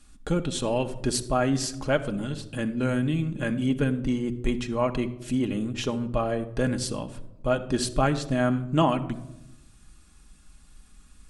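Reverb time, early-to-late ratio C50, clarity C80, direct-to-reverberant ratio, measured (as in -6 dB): 0.90 s, 14.5 dB, 17.0 dB, 5.0 dB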